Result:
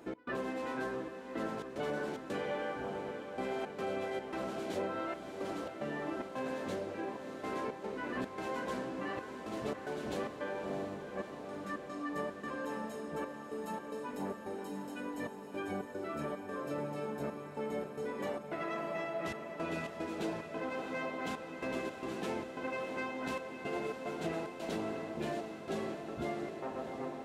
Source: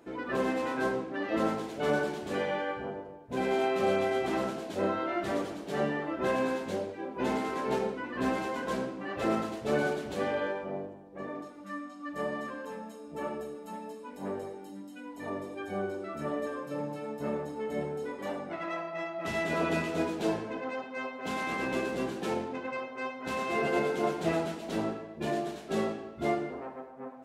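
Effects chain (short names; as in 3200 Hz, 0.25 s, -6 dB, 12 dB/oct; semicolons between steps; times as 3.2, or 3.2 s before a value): compressor 5:1, threshold -39 dBFS, peak gain reduction 14 dB; step gate "x.xxxxxx..xx.xx" 111 bpm -24 dB; diffused feedback echo 0.651 s, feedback 73%, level -8.5 dB; gain +3 dB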